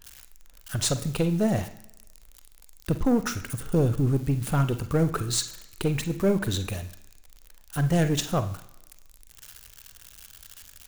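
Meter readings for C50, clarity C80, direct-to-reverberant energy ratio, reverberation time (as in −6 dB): 12.5 dB, 16.0 dB, 9.0 dB, 1.1 s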